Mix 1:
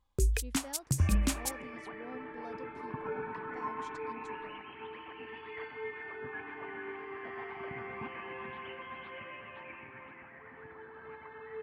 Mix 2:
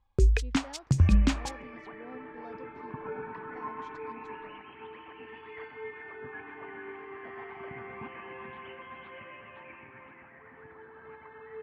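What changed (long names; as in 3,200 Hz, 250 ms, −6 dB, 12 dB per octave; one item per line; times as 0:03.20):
first sound +6.5 dB
master: add high-frequency loss of the air 150 metres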